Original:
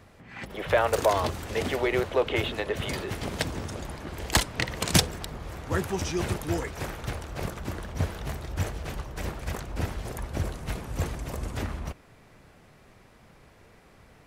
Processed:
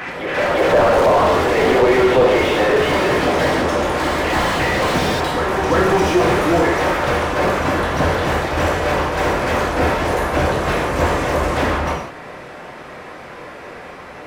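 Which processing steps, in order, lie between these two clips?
gated-style reverb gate 220 ms falling, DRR -3 dB; overdrive pedal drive 29 dB, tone 1.3 kHz, clips at -4 dBFS; on a send: reverse echo 352 ms -7.5 dB; on the sum: slew-rate limiter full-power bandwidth 220 Hz

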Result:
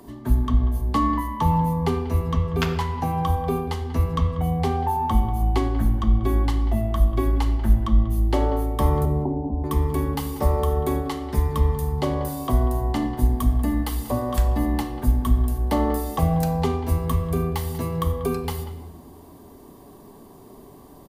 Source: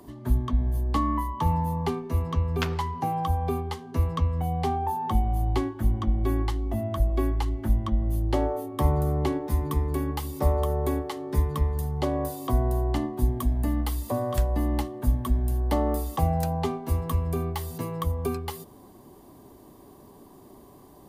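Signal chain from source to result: 9.05–9.64 s: rippled Chebyshev low-pass 980 Hz, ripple 6 dB; speakerphone echo 190 ms, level -14 dB; on a send at -6 dB: reverberation RT60 1.2 s, pre-delay 4 ms; on the sum: trim +3 dB

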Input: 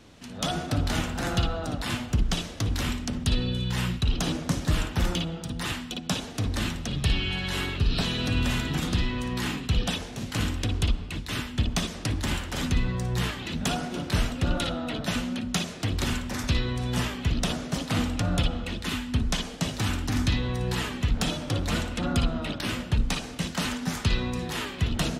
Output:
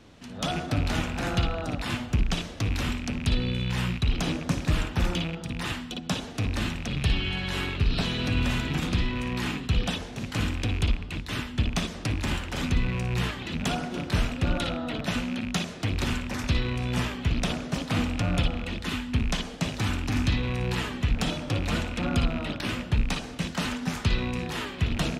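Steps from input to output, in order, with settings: rattle on loud lows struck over -31 dBFS, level -25 dBFS; treble shelf 5.5 kHz -6.5 dB

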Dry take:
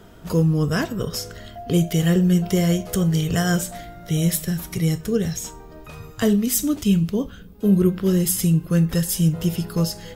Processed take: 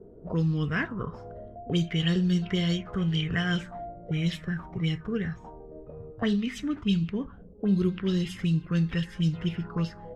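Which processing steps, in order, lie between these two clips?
dynamic bell 580 Hz, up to -7 dB, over -39 dBFS, Q 1.6; touch-sensitive low-pass 410–4300 Hz up, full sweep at -15 dBFS; trim -7 dB

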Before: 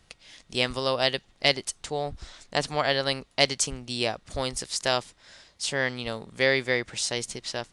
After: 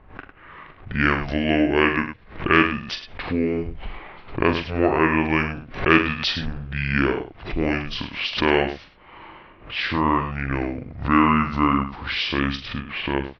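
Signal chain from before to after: on a send: early reflections 25 ms -7.5 dB, 59 ms -10.5 dB; on the sum: level-controlled noise filter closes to 2.5 kHz, open at -22 dBFS; in parallel at +1 dB: compression, threshold -38 dBFS, peak gain reduction 21 dB; on the sum: short-mantissa float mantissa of 6-bit; distance through air 67 m; speed mistake 78 rpm record played at 45 rpm; swell ahead of each attack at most 130 dB/s; trim +4 dB

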